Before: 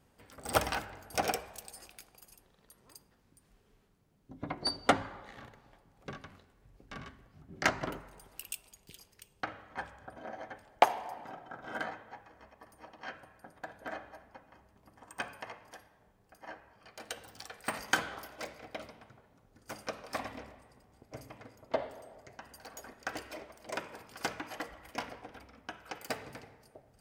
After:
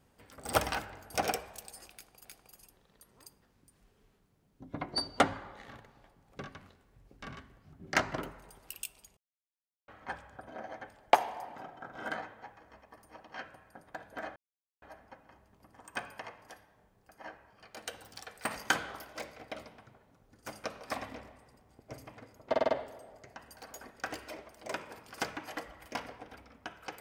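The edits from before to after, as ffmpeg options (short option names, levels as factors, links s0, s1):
-filter_complex "[0:a]asplit=9[s0][s1][s2][s3][s4][s5][s6][s7][s8];[s0]atrim=end=2.252[s9];[s1]atrim=start=1.938:end=8.86,asetpts=PTS-STARTPTS,afade=t=out:st=6.918:d=0.004:c=hsin[s10];[s2]atrim=start=8.86:end=9.57,asetpts=PTS-STARTPTS,volume=0[s11];[s3]atrim=start=9.57:end=14.05,asetpts=PTS-STARTPTS,afade=t=in:d=0.004:c=hsin,afade=t=out:st=4.476:d=0.004:c=hsin,apad=pad_dur=0.46[s12];[s4]atrim=start=14.05:end=21.772,asetpts=PTS-STARTPTS,afade=t=in:d=0.004:c=hsin[s13];[s5]atrim=start=21.718:end=21.772[s14];[s6]atrim=start=21.718:end=21.772[s15];[s7]atrim=start=21.718:end=21.772[s16];[s8]atrim=start=21.718[s17];[s10][s11][s12][s13]concat=n=4:v=0:a=1[s18];[s9][s18]acrossfade=d=0.004:c1=hsin:c2=hsin[s19];[s19][s14]acrossfade=d=0.004:c1=hsin:c2=hsin[s20];[s20][s15]acrossfade=d=0.004:c1=hsin:c2=hsin[s21];[s21][s16]acrossfade=d=0.004:c1=hsin:c2=hsin[s22];[s22][s17]acrossfade=d=0.004:c1=hsin:c2=hsin"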